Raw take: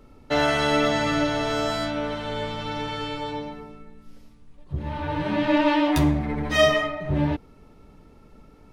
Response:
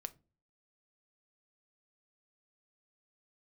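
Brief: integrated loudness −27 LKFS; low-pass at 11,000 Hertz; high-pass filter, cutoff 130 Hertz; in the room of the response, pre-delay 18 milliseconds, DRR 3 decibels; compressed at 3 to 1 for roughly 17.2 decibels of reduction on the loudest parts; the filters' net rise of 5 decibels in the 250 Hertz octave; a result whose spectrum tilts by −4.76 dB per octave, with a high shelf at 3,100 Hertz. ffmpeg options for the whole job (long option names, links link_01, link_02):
-filter_complex "[0:a]highpass=130,lowpass=11000,equalizer=frequency=250:width_type=o:gain=6.5,highshelf=frequency=3100:gain=7.5,acompressor=threshold=-37dB:ratio=3,asplit=2[link_01][link_02];[1:a]atrim=start_sample=2205,adelay=18[link_03];[link_02][link_03]afir=irnorm=-1:irlink=0,volume=0.5dB[link_04];[link_01][link_04]amix=inputs=2:normalize=0,volume=7.5dB"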